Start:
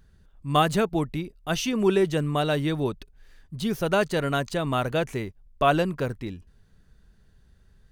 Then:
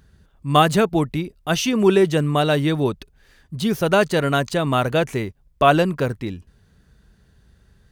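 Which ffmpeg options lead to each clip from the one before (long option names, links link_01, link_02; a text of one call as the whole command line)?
ffmpeg -i in.wav -af "highpass=47,volume=6dB" out.wav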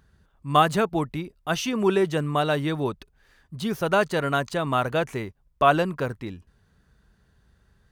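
ffmpeg -i in.wav -af "equalizer=frequency=1100:width_type=o:width=1.5:gain=5.5,volume=-7dB" out.wav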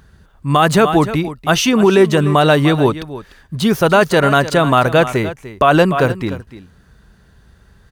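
ffmpeg -i in.wav -af "aecho=1:1:297:0.178,alimiter=level_in=14dB:limit=-1dB:release=50:level=0:latency=1,volume=-1dB" out.wav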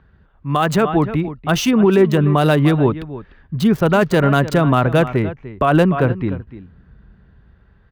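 ffmpeg -i in.wav -filter_complex "[0:a]equalizer=frequency=9300:width=3.5:gain=-6.5,acrossover=split=330|3300[link_01][link_02][link_03];[link_01]dynaudnorm=framelen=200:gausssize=9:maxgain=11.5dB[link_04];[link_03]acrusher=bits=3:mix=0:aa=0.5[link_05];[link_04][link_02][link_05]amix=inputs=3:normalize=0,volume=-5dB" out.wav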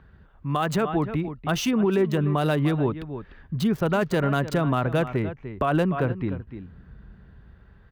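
ffmpeg -i in.wav -af "acompressor=threshold=-35dB:ratio=1.5" out.wav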